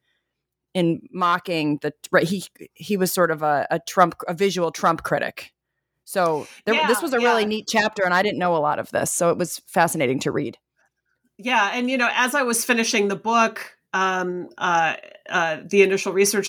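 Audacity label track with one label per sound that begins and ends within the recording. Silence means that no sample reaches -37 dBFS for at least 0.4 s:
0.750000	5.460000	sound
6.080000	10.540000	sound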